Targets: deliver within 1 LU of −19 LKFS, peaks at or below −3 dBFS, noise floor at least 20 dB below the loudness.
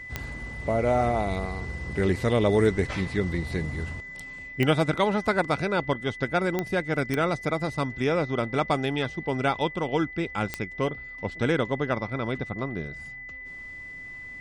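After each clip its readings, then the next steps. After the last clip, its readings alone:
number of clicks 5; interfering tone 2,000 Hz; level of the tone −38 dBFS; integrated loudness −27.0 LKFS; sample peak −7.5 dBFS; target loudness −19.0 LKFS
→ click removal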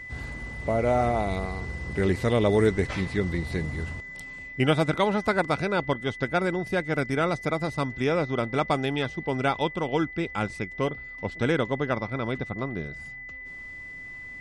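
number of clicks 0; interfering tone 2,000 Hz; level of the tone −38 dBFS
→ notch filter 2,000 Hz, Q 30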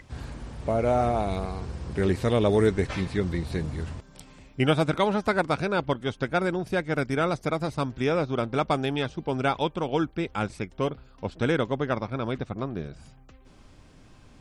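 interfering tone none found; integrated loudness −27.0 LKFS; sample peak −7.5 dBFS; target loudness −19.0 LKFS
→ level +8 dB
brickwall limiter −3 dBFS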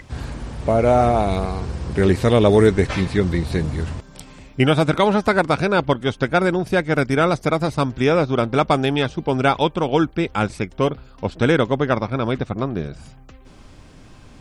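integrated loudness −19.5 LKFS; sample peak −3.0 dBFS; background noise floor −45 dBFS

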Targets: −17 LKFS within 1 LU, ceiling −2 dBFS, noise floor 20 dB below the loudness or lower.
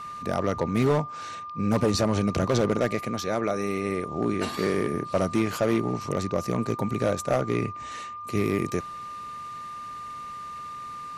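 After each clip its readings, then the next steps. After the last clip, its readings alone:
share of clipped samples 0.9%; peaks flattened at −16.0 dBFS; interfering tone 1,200 Hz; level of the tone −35 dBFS; integrated loudness −27.5 LKFS; sample peak −16.0 dBFS; target loudness −17.0 LKFS
→ clipped peaks rebuilt −16 dBFS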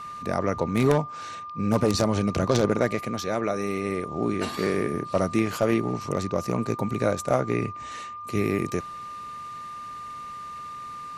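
share of clipped samples 0.0%; interfering tone 1,200 Hz; level of the tone −35 dBFS
→ notch filter 1,200 Hz, Q 30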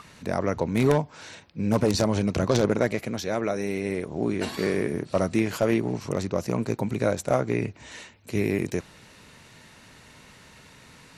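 interfering tone none found; integrated loudness −26.5 LKFS; sample peak −7.0 dBFS; target loudness −17.0 LKFS
→ level +9.5 dB
brickwall limiter −2 dBFS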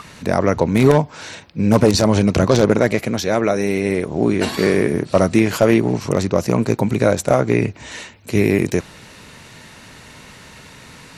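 integrated loudness −17.0 LKFS; sample peak −2.0 dBFS; background noise floor −42 dBFS

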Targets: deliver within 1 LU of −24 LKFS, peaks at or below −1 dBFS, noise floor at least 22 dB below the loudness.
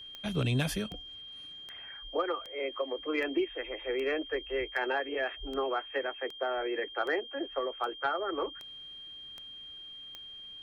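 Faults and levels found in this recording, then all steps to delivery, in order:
number of clicks 14; interfering tone 3,200 Hz; level of the tone −44 dBFS; integrated loudness −34.5 LKFS; sample peak −19.0 dBFS; target loudness −24.0 LKFS
→ click removal
notch filter 3,200 Hz, Q 30
level +10.5 dB

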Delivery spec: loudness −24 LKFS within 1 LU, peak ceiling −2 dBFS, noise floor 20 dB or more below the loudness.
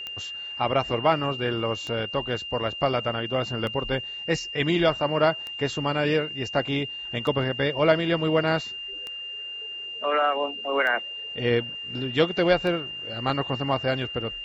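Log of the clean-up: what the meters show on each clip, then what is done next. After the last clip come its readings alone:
number of clicks 8; interfering tone 2,800 Hz; level of the tone −33 dBFS; integrated loudness −25.5 LKFS; sample peak −7.0 dBFS; target loudness −24.0 LKFS
→ click removal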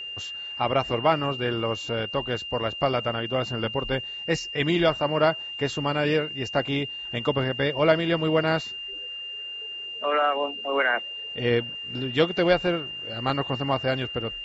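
number of clicks 0; interfering tone 2,800 Hz; level of the tone −33 dBFS
→ notch filter 2,800 Hz, Q 30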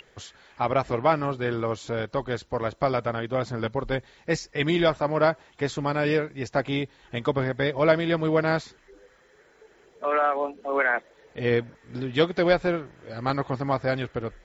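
interfering tone none found; integrated loudness −26.0 LKFS; sample peak −7.0 dBFS; target loudness −24.0 LKFS
→ level +2 dB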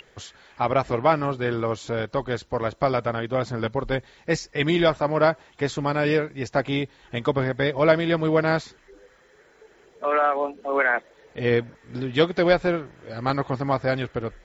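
integrated loudness −24.0 LKFS; sample peak −5.0 dBFS; background noise floor −57 dBFS

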